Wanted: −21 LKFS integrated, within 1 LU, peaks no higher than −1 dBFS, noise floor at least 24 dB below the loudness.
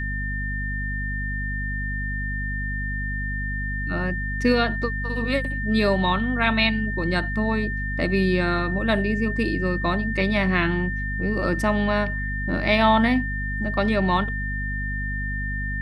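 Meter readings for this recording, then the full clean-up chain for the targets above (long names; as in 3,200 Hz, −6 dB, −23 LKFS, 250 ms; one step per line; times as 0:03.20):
mains hum 50 Hz; hum harmonics up to 250 Hz; level of the hum −26 dBFS; interfering tone 1,800 Hz; level of the tone −29 dBFS; integrated loudness −24.0 LKFS; sample peak −6.5 dBFS; target loudness −21.0 LKFS
→ hum removal 50 Hz, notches 5
notch filter 1,800 Hz, Q 30
level +3 dB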